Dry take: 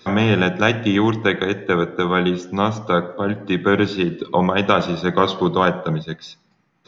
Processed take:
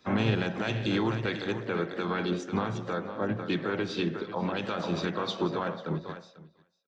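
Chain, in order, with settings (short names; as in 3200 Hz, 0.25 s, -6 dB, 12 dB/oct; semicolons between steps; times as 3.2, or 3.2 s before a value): ending faded out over 1.85 s; compressor 8:1, threshold -20 dBFS, peak gain reduction 10.5 dB; feedback echo 0.496 s, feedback 17%, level -10 dB; harmoniser +4 st -15 dB; limiter -16.5 dBFS, peak gain reduction 9 dB; harmoniser +3 st -9 dB; three-band expander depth 100%; gain -3.5 dB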